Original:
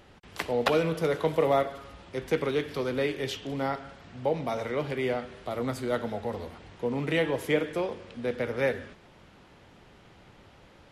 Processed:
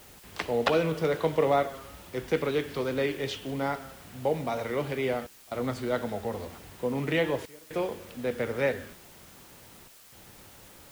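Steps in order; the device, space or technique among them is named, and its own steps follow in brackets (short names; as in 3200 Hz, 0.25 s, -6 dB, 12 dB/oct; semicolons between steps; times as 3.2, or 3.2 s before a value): worn cassette (LPF 6900 Hz; wow and flutter; level dips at 5.27/7.46/9.88, 0.242 s -26 dB; white noise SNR 23 dB)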